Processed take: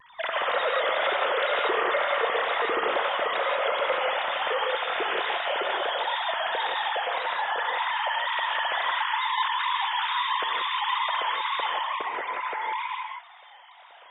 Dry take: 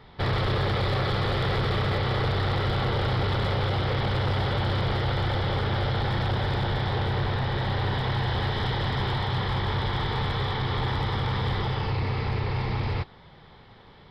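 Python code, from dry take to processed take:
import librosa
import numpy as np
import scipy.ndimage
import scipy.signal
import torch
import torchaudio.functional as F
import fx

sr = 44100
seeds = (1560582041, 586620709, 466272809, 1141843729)

y = fx.sine_speech(x, sr)
y = fx.wow_flutter(y, sr, seeds[0], rate_hz=2.1, depth_cents=130.0)
y = fx.rev_gated(y, sr, seeds[1], gate_ms=200, shape='rising', drr_db=0.5)
y = y * librosa.db_to_amplitude(-4.0)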